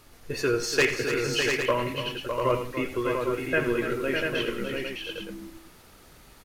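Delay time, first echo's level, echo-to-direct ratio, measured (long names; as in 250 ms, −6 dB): 85 ms, −13.0 dB, −1.0 dB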